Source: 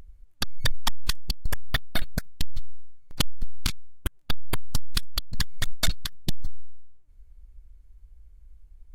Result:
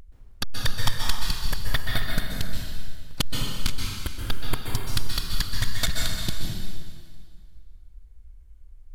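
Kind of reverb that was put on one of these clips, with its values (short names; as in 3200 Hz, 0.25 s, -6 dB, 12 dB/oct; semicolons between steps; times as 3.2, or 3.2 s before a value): plate-style reverb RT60 2 s, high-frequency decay 0.9×, pre-delay 0.115 s, DRR -1 dB; gain -1 dB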